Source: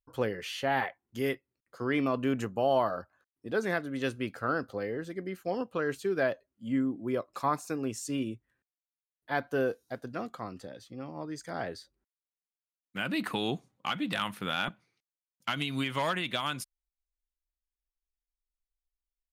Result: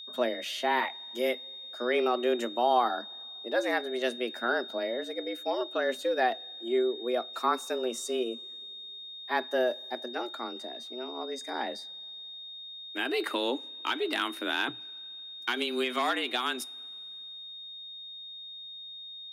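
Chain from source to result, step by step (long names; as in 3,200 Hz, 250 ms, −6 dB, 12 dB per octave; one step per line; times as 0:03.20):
frequency shifter +120 Hz
steady tone 3,700 Hz −43 dBFS
coupled-rooms reverb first 0.28 s, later 2.7 s, from −18 dB, DRR 19.5 dB
level +1.5 dB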